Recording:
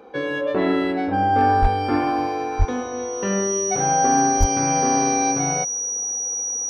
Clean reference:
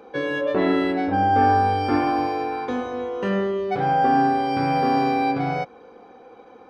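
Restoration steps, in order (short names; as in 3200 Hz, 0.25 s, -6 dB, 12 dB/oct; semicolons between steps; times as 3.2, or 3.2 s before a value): clip repair -8.5 dBFS; notch 5800 Hz, Q 30; 1.61–1.73 HPF 140 Hz 24 dB/oct; 2.58–2.7 HPF 140 Hz 24 dB/oct; 4.39–4.51 HPF 140 Hz 24 dB/oct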